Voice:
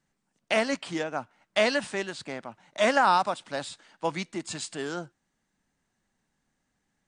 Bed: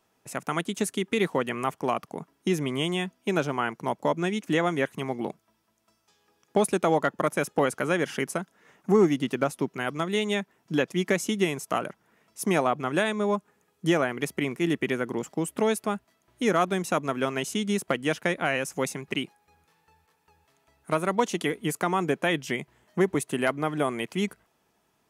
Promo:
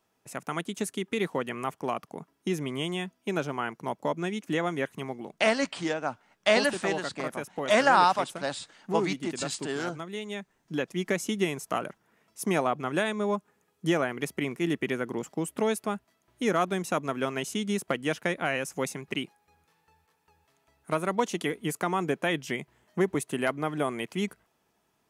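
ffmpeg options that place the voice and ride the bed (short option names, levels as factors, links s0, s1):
-filter_complex "[0:a]adelay=4900,volume=1.12[s0];[1:a]volume=1.5,afade=t=out:st=5.05:d=0.21:silence=0.501187,afade=t=in:st=10.27:d=1.05:silence=0.421697[s1];[s0][s1]amix=inputs=2:normalize=0"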